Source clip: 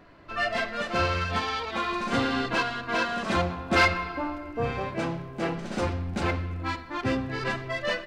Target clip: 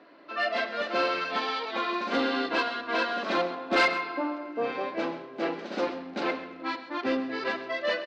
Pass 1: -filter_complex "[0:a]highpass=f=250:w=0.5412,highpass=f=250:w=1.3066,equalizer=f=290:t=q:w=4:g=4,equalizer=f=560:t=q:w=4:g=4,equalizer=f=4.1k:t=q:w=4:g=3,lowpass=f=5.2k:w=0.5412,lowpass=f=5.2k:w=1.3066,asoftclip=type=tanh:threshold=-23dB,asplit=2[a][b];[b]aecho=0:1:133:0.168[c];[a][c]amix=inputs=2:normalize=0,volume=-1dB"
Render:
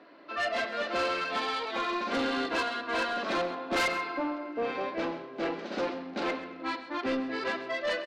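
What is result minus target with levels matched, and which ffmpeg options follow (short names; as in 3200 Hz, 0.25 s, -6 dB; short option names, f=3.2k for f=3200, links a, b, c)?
soft clip: distortion +12 dB
-filter_complex "[0:a]highpass=f=250:w=0.5412,highpass=f=250:w=1.3066,equalizer=f=290:t=q:w=4:g=4,equalizer=f=560:t=q:w=4:g=4,equalizer=f=4.1k:t=q:w=4:g=3,lowpass=f=5.2k:w=0.5412,lowpass=f=5.2k:w=1.3066,asoftclip=type=tanh:threshold=-12.5dB,asplit=2[a][b];[b]aecho=0:1:133:0.168[c];[a][c]amix=inputs=2:normalize=0,volume=-1dB"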